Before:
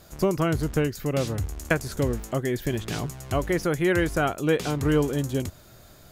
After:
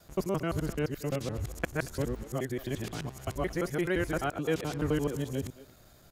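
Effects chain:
reversed piece by piece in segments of 86 ms
far-end echo of a speakerphone 230 ms, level −15 dB
level −7 dB

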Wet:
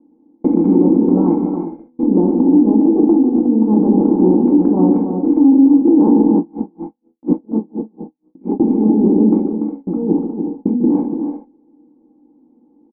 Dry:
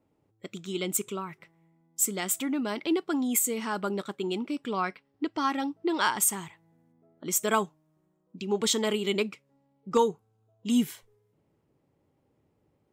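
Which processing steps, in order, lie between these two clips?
compressor on every frequency bin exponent 0.4
noise gate −29 dBFS, range −35 dB
treble cut that deepens with the level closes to 580 Hz, closed at −18.5 dBFS
spectral tilt −2 dB per octave
notch filter 1,900 Hz, Q 12
comb filter 3.8 ms, depth 60%
compressor whose output falls as the input rises −23 dBFS, ratio −1
formant resonators in series u
multi-tap delay 145/179/290/362 ms −11/−19/−7.5/−11 dB
convolution reverb, pre-delay 3 ms, DRR 2.5 dB
boost into a limiter +18.5 dB
0:06.37–0:08.60: tremolo with a sine in dB 4.2 Hz, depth 36 dB
level −2 dB

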